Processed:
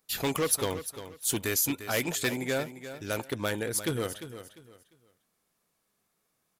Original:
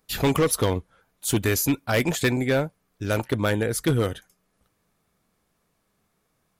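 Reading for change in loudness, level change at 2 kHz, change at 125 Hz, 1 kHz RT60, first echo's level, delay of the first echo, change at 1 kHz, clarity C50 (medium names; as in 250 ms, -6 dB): -6.0 dB, -5.5 dB, -12.0 dB, no reverb, -12.0 dB, 349 ms, -6.5 dB, no reverb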